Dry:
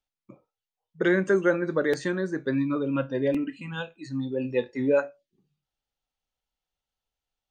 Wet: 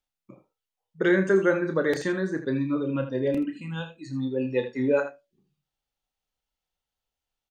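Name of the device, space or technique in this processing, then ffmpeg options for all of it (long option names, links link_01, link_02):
slapback doubling: -filter_complex "[0:a]asettb=1/sr,asplit=3[link_01][link_02][link_03];[link_01]atrim=end=2.374[link_04];[link_02]atrim=start=2.37:end=4.17,asetpts=PTS-STARTPTS,afade=type=in:duration=0.004:curve=qsin,afade=type=out:start_time=1.796:duration=0.004:curve=qsin,equalizer=frequency=1500:width_type=o:width=2.2:gain=-4.5[link_05];[link_03]atrim=start=4.166[link_06];[link_04][link_05]acrossfade=duration=0.004:curve1=hsin:curve2=qsin[link_07];[link_07][link_06]acrossfade=duration=0.004:curve1=qsin:curve2=hsin,asplit=3[link_08][link_09][link_10];[link_09]adelay=31,volume=-9dB[link_11];[link_10]adelay=80,volume=-11.5dB[link_12];[link_08][link_11][link_12]amix=inputs=3:normalize=0"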